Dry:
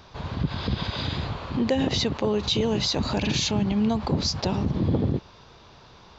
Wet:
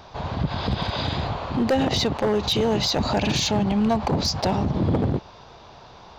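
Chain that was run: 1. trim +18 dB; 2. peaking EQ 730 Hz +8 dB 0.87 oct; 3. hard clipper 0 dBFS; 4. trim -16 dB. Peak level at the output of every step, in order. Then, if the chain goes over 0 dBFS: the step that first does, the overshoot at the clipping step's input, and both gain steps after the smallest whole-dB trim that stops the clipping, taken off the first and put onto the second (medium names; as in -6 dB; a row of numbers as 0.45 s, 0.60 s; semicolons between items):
+7.5 dBFS, +9.5 dBFS, 0.0 dBFS, -16.0 dBFS; step 1, 9.5 dB; step 1 +8 dB, step 4 -6 dB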